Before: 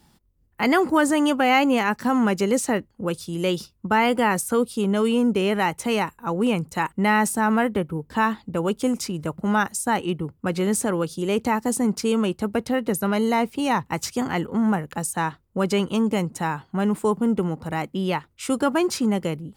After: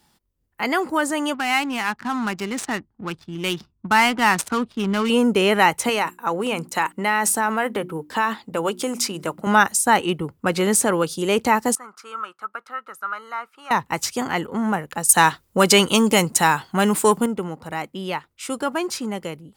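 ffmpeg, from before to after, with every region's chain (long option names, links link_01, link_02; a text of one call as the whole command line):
ffmpeg -i in.wav -filter_complex "[0:a]asettb=1/sr,asplit=3[link_01][link_02][link_03];[link_01]atrim=end=1.344[link_04];[link_02]atrim=start=1.34:end=5.1,asetpts=PTS-STARTPTS,afade=type=in:duration=0.004:curve=qsin,afade=type=out:start_time=3.756:duration=0.004:curve=qsin,equalizer=frequency=520:width=2.4:gain=-15,adynamicsmooth=sensitivity=7:basefreq=690[link_05];[link_03]atrim=start=5.096[link_06];[link_04][link_05]acrossfade=duration=0.004:curve1=hsin:curve2=qsin[link_07];[link_07][link_06]acrossfade=duration=0.004:curve1=qsin:curve2=hsin,asettb=1/sr,asplit=3[link_08][link_09][link_10];[link_08]atrim=end=5.894[link_11];[link_09]atrim=start=5.89:end=9.47,asetpts=PTS-STARTPTS,afade=type=in:duration=0.004:curve=qsin,afade=type=out:start_time=3.576:duration=0.004:curve=qsin,bandreject=frequency=60:width_type=h:width=6,bandreject=frequency=120:width_type=h:width=6,bandreject=frequency=180:width_type=h:width=6,bandreject=frequency=240:width_type=h:width=6,bandreject=frequency=300:width_type=h:width=6,bandreject=frequency=360:width_type=h:width=6,acompressor=threshold=-21dB:ratio=6:attack=3.2:release=140:knee=1:detection=peak,highpass=frequency=240:poles=1[link_12];[link_10]atrim=start=9.466[link_13];[link_11][link_12]acrossfade=duration=0.004:curve1=hsin:curve2=qsin[link_14];[link_14][link_13]acrossfade=duration=0.004:curve1=qsin:curve2=hsin,asettb=1/sr,asplit=3[link_15][link_16][link_17];[link_15]atrim=end=11.754[link_18];[link_16]atrim=start=11.75:end=13.71,asetpts=PTS-STARTPTS,afade=type=in:duration=0.004:curve=qsin,afade=type=out:start_time=1.956:duration=0.004:curve=qsin,bandpass=frequency=1300:width_type=q:width=11,aemphasis=mode=production:type=50fm,acontrast=72[link_19];[link_17]atrim=start=13.706[link_20];[link_18][link_19]acrossfade=duration=0.004:curve1=hsin:curve2=qsin[link_21];[link_21][link_20]acrossfade=duration=0.004:curve1=qsin:curve2=hsin,asettb=1/sr,asplit=3[link_22][link_23][link_24];[link_22]atrim=end=15.094[link_25];[link_23]atrim=start=15.09:end=17.26,asetpts=PTS-STARTPTS,afade=type=in:duration=0.004:curve=qsin,afade=type=out:start_time=2.166:duration=0.004:curve=qsin,highshelf=frequency=2900:gain=9.5,acontrast=60[link_26];[link_24]atrim=start=17.256[link_27];[link_25][link_26]acrossfade=duration=0.004:curve1=hsin:curve2=qsin[link_28];[link_28][link_27]acrossfade=duration=0.004:curve1=qsin:curve2=hsin,lowshelf=frequency=360:gain=-9.5,dynaudnorm=framelen=560:gausssize=11:maxgain=11.5dB" out.wav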